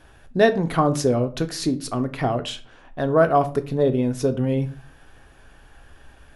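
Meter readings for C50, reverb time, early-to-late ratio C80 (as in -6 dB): 16.5 dB, 0.40 s, 22.0 dB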